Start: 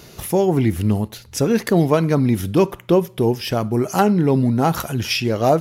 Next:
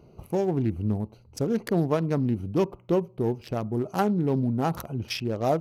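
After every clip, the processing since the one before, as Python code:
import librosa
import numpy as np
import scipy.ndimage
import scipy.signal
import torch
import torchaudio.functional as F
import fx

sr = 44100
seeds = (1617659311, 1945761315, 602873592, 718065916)

y = fx.wiener(x, sr, points=25)
y = fx.notch(y, sr, hz=7200.0, q=26.0)
y = F.gain(torch.from_numpy(y), -8.0).numpy()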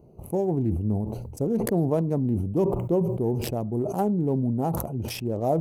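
y = fx.band_shelf(x, sr, hz=2600.0, db=-14.0, octaves=2.6)
y = fx.sustainer(y, sr, db_per_s=42.0)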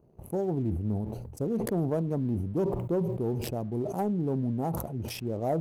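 y = fx.leveller(x, sr, passes=1)
y = F.gain(torch.from_numpy(y), -8.0).numpy()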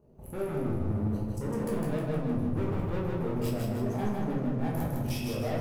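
y = 10.0 ** (-32.5 / 20.0) * np.tanh(x / 10.0 ** (-32.5 / 20.0))
y = fx.echo_feedback(y, sr, ms=156, feedback_pct=45, wet_db=-3.0)
y = fx.room_shoebox(y, sr, seeds[0], volume_m3=140.0, walls='mixed', distance_m=1.3)
y = F.gain(torch.from_numpy(y), -3.0).numpy()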